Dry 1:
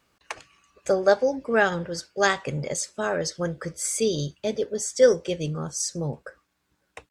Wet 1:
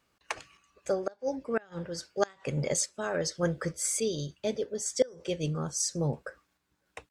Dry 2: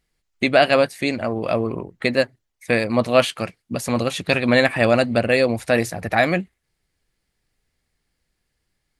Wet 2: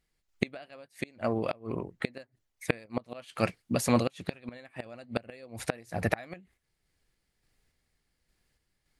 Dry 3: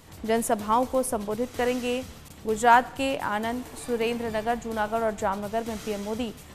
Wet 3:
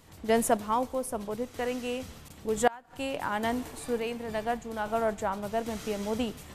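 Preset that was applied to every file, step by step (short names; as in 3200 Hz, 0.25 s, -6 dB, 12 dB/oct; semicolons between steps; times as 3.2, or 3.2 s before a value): flipped gate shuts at -10 dBFS, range -28 dB; random-step tremolo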